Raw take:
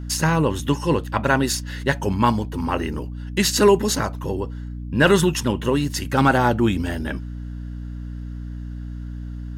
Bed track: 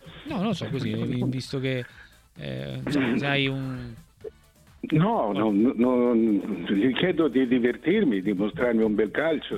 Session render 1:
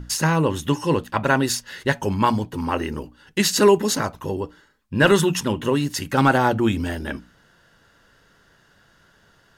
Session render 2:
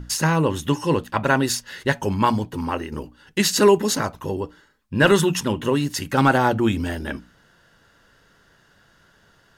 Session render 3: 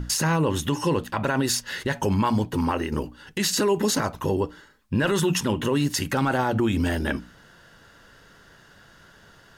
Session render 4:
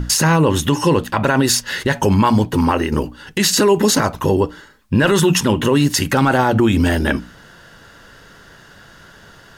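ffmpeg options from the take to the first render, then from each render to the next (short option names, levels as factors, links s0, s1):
-af "bandreject=f=60:t=h:w=6,bandreject=f=120:t=h:w=6,bandreject=f=180:t=h:w=6,bandreject=f=240:t=h:w=6,bandreject=f=300:t=h:w=6"
-filter_complex "[0:a]asplit=2[s0][s1];[s0]atrim=end=2.92,asetpts=PTS-STARTPTS,afade=t=out:st=2.51:d=0.41:c=qsin:silence=0.398107[s2];[s1]atrim=start=2.92,asetpts=PTS-STARTPTS,afade=t=in:d=0.004:c=hsin:silence=0.398107[s3];[s2][s3]concat=n=2:v=0:a=1"
-filter_complex "[0:a]asplit=2[s0][s1];[s1]acompressor=threshold=0.0398:ratio=6,volume=0.75[s2];[s0][s2]amix=inputs=2:normalize=0,alimiter=limit=0.2:level=0:latency=1:release=53"
-af "volume=2.66"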